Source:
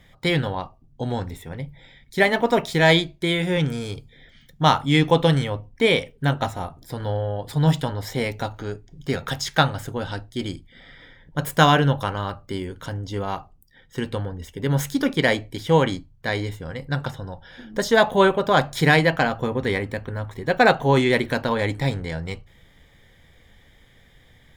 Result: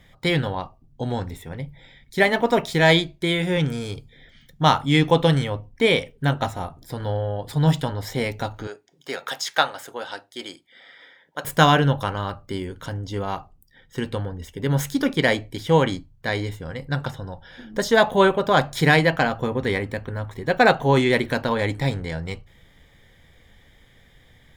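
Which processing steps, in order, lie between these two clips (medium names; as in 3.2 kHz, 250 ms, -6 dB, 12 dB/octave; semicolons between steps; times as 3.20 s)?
8.67–11.45 s: high-pass 500 Hz 12 dB/octave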